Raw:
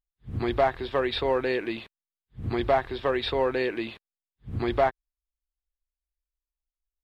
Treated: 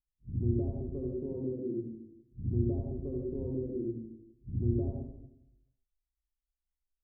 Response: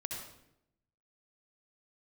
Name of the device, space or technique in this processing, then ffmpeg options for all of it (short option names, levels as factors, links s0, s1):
next room: -filter_complex "[0:a]asettb=1/sr,asplit=3[s0][s1][s2];[s0]atrim=end=1.124[s3];[s1]atrim=start=1.12:end=1.8,asetpts=PTS-STARTPTS,afade=t=in:d=0.004:c=qsin,afade=t=out:st=0.676:d=0.004:c=qsin,highpass=f=110:w=0.5412,highpass=f=110:w=1.3066[s4];[s2]atrim=start=1.796[s5];[s3][s4]acrossfade=d=0.004:c1=hsin:c2=qsin[s6];[s6][s5]acrossfade=d=0.004:c1=qsin:c2=hsin,lowpass=f=310:w=0.5412,lowpass=f=310:w=1.3066[s7];[1:a]atrim=start_sample=2205[s8];[s7][s8]afir=irnorm=-1:irlink=0,volume=0.891"